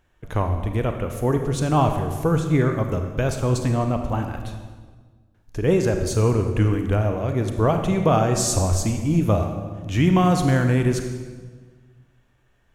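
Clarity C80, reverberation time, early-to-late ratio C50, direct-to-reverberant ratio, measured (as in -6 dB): 7.5 dB, 1.5 s, 6.5 dB, 5.0 dB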